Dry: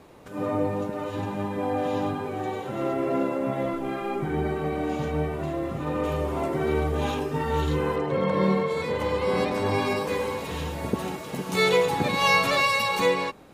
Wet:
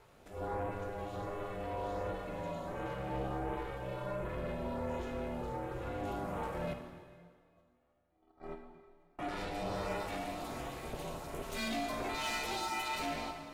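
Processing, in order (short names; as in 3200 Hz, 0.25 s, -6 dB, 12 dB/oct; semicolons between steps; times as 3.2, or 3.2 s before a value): 6.73–9.19 gate -18 dBFS, range -43 dB; HPF 140 Hz 6 dB/oct; soft clip -25.5 dBFS, distortion -9 dB; LFO notch saw up 1.4 Hz 400–5600 Hz; ring modulator 210 Hz; plate-style reverb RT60 1.9 s, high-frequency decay 0.9×, DRR 4 dB; gain -5.5 dB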